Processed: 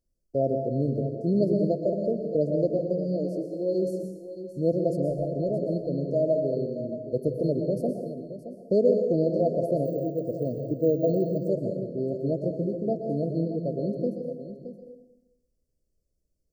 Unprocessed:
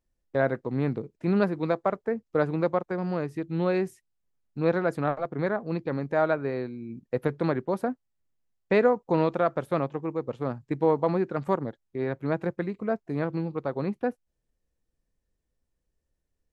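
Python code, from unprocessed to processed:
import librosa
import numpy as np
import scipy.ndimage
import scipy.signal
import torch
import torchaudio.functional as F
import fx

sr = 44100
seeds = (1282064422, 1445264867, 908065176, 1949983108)

p1 = fx.highpass(x, sr, hz=fx.line((2.97, 130.0), (3.73, 360.0)), slope=24, at=(2.97, 3.73), fade=0.02)
p2 = p1 + fx.echo_single(p1, sr, ms=621, db=-12.0, dry=0)
p3 = fx.rev_plate(p2, sr, seeds[0], rt60_s=1.0, hf_ratio=0.75, predelay_ms=105, drr_db=3.5)
p4 = fx.resample_bad(p3, sr, factor=2, down='none', up='hold', at=(9.85, 11.48))
y = fx.brickwall_bandstop(p4, sr, low_hz=700.0, high_hz=4200.0)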